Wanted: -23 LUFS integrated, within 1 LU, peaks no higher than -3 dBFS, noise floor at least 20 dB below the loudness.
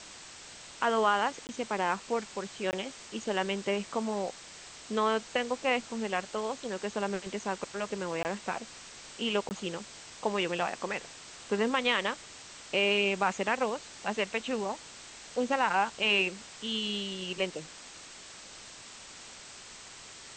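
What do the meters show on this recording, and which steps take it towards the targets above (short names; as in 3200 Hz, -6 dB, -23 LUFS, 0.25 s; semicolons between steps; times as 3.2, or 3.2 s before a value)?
dropouts 4; longest dropout 19 ms; noise floor -49 dBFS; noise floor target -52 dBFS; loudness -31.5 LUFS; peak -13.5 dBFS; loudness target -23.0 LUFS
-> interpolate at 1.47/2.71/8.23/9.49, 19 ms; denoiser 6 dB, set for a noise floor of -49 dBFS; gain +8.5 dB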